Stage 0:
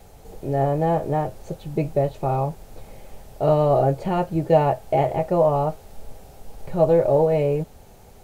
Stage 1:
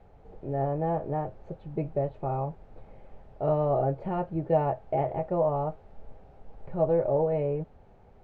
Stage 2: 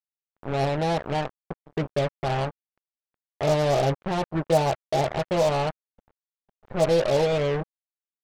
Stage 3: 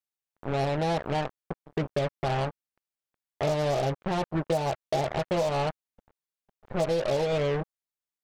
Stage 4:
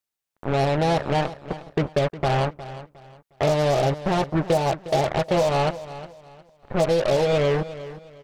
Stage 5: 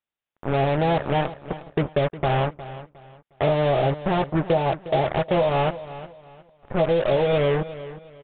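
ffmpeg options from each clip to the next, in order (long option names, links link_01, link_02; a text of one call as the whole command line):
ffmpeg -i in.wav -af "lowpass=1800,volume=-7.5dB" out.wav
ffmpeg -i in.wav -af "acrusher=bits=4:mix=0:aa=0.5,volume=3.5dB" out.wav
ffmpeg -i in.wav -af "acompressor=threshold=-23dB:ratio=6" out.wav
ffmpeg -i in.wav -af "aecho=1:1:359|718|1077:0.178|0.0516|0.015,volume=6dB" out.wav
ffmpeg -i in.wav -af "aresample=8000,aresample=44100" out.wav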